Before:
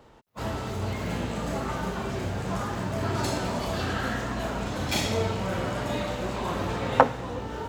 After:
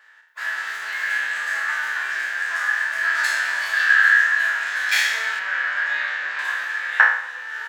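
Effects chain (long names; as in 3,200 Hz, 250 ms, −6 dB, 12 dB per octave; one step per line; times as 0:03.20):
peak hold with a decay on every bin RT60 0.61 s
automatic gain control gain up to 3.5 dB
high-pass with resonance 1,700 Hz, resonance Q 14
0:05.39–0:06.39: high-frequency loss of the air 130 metres
on a send: repeating echo 118 ms, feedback 52%, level −18 dB
on the sum: level −1.5 dB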